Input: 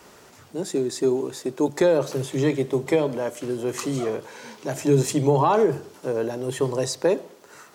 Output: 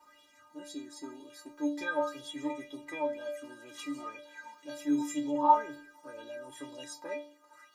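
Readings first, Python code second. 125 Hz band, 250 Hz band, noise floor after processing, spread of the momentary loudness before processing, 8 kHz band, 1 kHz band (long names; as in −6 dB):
−31.5 dB, −9.5 dB, −63 dBFS, 11 LU, −14.5 dB, −3.0 dB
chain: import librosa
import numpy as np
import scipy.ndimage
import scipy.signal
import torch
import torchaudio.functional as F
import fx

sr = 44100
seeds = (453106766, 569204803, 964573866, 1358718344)

y = fx.stiff_resonator(x, sr, f0_hz=290.0, decay_s=0.45, stiffness=0.008)
y = fx.bell_lfo(y, sr, hz=2.0, low_hz=910.0, high_hz=3700.0, db=15)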